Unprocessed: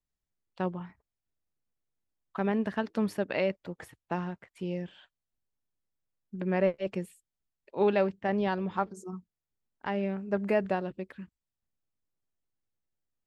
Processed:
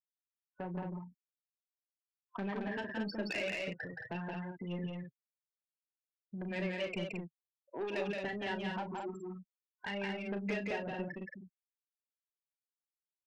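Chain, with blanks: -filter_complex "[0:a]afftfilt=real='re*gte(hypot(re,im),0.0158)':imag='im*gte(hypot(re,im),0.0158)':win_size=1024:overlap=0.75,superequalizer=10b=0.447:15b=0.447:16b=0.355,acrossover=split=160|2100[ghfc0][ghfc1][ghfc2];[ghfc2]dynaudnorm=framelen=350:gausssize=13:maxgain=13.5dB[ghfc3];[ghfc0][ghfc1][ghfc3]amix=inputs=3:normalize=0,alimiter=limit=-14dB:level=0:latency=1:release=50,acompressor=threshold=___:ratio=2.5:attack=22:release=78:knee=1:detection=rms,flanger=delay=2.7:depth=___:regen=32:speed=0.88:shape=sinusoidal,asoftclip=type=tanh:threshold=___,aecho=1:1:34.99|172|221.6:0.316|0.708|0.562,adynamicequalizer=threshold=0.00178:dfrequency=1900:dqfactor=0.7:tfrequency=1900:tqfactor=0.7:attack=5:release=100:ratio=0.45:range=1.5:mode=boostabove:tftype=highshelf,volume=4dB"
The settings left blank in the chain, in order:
-41dB, 5.3, -36.5dB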